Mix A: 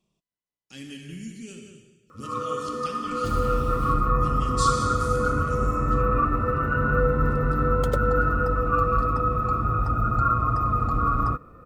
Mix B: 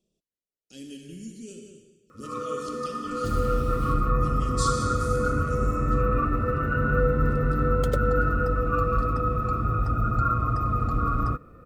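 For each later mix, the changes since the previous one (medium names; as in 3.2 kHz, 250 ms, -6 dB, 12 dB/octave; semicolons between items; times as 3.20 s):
speech: add graphic EQ 125/500/1000/2000 Hz -8/+6/-9/-11 dB; master: add peaking EQ 960 Hz -8.5 dB 0.66 oct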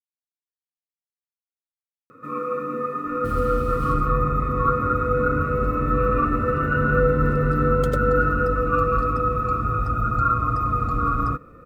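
speech: muted; first sound +5.0 dB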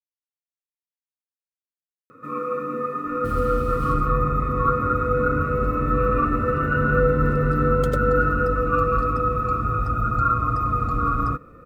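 no change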